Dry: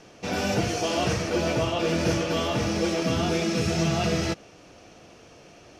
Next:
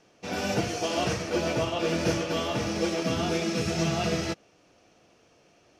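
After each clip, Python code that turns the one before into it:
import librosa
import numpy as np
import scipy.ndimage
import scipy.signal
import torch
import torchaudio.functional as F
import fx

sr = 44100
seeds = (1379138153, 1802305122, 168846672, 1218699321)

y = fx.low_shelf(x, sr, hz=110.0, db=-5.5)
y = fx.upward_expand(y, sr, threshold_db=-42.0, expansion=1.5)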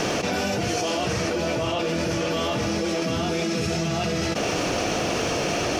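y = fx.env_flatten(x, sr, amount_pct=100)
y = y * 10.0 ** (-3.0 / 20.0)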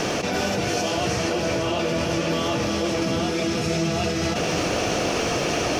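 y = x + 10.0 ** (-5.0 / 20.0) * np.pad(x, (int(344 * sr / 1000.0), 0))[:len(x)]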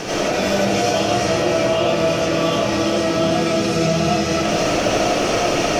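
y = fx.rev_freeverb(x, sr, rt60_s=0.63, hf_ratio=0.4, predelay_ms=50, drr_db=-7.5)
y = y * 10.0 ** (-3.0 / 20.0)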